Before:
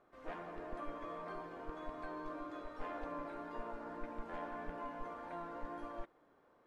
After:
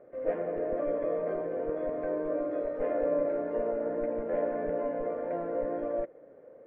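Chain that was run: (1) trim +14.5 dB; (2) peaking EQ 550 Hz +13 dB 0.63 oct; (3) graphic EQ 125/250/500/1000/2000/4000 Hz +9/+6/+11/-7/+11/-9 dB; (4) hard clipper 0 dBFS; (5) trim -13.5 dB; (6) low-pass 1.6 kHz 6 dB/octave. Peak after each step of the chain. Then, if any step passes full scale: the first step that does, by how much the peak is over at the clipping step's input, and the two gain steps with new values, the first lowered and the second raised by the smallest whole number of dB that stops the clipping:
-16.0 dBFS, -11.5 dBFS, -4.0 dBFS, -4.0 dBFS, -17.5 dBFS, -18.0 dBFS; nothing clips

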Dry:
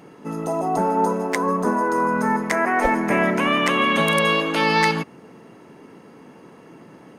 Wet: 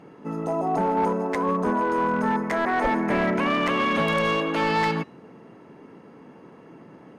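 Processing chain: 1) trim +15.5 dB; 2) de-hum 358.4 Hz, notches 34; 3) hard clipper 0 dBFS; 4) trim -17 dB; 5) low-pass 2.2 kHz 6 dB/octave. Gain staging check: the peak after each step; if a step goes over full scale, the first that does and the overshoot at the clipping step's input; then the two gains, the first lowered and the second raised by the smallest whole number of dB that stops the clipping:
+9.5 dBFS, +9.5 dBFS, 0.0 dBFS, -17.0 dBFS, -17.0 dBFS; step 1, 9.5 dB; step 1 +5.5 dB, step 4 -7 dB

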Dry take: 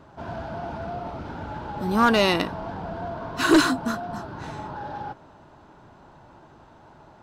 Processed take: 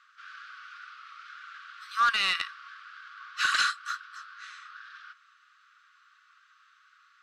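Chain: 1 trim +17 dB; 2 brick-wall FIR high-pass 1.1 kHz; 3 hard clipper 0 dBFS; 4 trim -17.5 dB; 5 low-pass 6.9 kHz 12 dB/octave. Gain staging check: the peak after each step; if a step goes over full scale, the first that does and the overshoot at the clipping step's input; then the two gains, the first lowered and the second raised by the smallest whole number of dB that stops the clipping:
+7.0 dBFS, +6.5 dBFS, 0.0 dBFS, -17.5 dBFS, -16.5 dBFS; step 1, 6.5 dB; step 1 +10 dB, step 4 -10.5 dB

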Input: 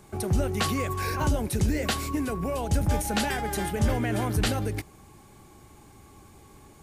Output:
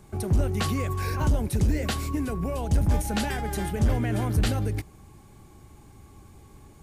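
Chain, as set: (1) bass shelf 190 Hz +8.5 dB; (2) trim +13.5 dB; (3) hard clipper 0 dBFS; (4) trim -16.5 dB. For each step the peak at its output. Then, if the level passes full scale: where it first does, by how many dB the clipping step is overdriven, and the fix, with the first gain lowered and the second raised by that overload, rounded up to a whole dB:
-8.5 dBFS, +5.0 dBFS, 0.0 dBFS, -16.5 dBFS; step 2, 5.0 dB; step 2 +8.5 dB, step 4 -11.5 dB

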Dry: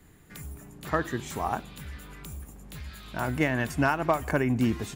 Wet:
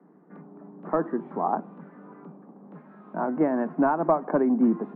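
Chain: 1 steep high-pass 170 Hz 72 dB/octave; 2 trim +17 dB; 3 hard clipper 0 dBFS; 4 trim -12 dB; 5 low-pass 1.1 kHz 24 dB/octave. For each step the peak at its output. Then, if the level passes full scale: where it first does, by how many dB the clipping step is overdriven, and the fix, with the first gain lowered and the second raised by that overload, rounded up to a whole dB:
-10.5 dBFS, +6.5 dBFS, 0.0 dBFS, -12.0 dBFS, -11.0 dBFS; step 2, 6.5 dB; step 2 +10 dB, step 4 -5 dB

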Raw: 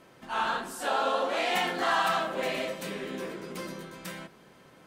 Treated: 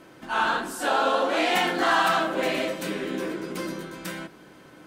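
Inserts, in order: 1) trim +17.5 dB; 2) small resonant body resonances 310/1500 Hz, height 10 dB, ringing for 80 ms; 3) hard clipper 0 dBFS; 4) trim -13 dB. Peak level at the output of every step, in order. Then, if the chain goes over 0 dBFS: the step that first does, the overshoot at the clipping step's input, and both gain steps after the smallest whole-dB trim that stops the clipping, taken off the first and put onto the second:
+2.5 dBFS, +3.0 dBFS, 0.0 dBFS, -13.0 dBFS; step 1, 3.0 dB; step 1 +14.5 dB, step 4 -10 dB

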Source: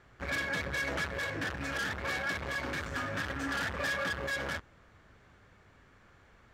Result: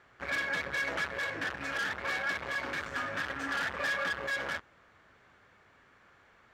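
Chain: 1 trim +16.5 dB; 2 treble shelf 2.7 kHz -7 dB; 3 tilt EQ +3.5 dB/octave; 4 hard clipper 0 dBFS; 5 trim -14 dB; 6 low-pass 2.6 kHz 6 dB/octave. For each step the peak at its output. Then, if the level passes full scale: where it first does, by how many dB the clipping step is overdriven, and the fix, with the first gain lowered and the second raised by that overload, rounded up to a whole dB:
-6.0 dBFS, -7.5 dBFS, -5.0 dBFS, -5.0 dBFS, -19.0 dBFS, -22.5 dBFS; nothing clips

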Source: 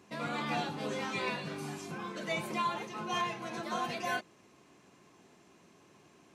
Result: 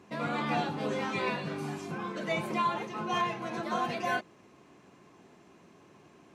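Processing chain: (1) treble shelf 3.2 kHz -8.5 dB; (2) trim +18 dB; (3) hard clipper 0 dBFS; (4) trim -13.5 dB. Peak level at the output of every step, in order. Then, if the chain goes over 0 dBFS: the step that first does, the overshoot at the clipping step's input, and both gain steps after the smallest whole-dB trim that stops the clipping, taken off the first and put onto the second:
-23.5 dBFS, -5.5 dBFS, -5.5 dBFS, -19.0 dBFS; nothing clips

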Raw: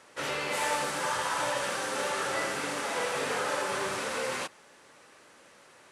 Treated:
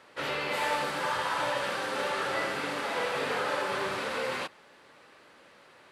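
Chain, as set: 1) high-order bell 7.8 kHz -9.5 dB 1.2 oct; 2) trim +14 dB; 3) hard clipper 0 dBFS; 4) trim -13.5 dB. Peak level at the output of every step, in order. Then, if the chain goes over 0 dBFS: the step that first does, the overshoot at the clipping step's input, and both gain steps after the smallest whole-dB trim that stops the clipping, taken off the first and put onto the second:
-18.5 dBFS, -4.5 dBFS, -4.5 dBFS, -18.0 dBFS; nothing clips

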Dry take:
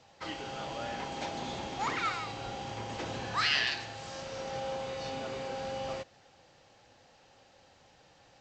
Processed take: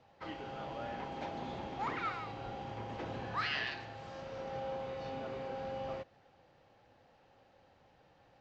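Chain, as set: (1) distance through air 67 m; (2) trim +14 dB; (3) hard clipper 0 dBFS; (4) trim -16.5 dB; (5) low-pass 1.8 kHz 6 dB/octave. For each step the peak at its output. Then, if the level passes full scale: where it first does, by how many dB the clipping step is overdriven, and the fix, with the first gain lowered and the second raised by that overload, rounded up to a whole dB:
-16.5 dBFS, -2.5 dBFS, -2.5 dBFS, -19.0 dBFS, -24.0 dBFS; nothing clips

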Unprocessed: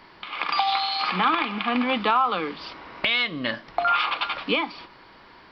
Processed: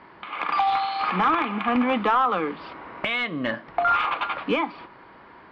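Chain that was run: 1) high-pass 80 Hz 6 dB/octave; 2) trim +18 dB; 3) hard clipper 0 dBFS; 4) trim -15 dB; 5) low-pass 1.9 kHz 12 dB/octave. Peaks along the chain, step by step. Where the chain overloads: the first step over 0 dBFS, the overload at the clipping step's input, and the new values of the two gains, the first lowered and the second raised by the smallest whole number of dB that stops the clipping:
-10.5 dBFS, +7.5 dBFS, 0.0 dBFS, -15.0 dBFS, -14.5 dBFS; step 2, 7.5 dB; step 2 +10 dB, step 4 -7 dB

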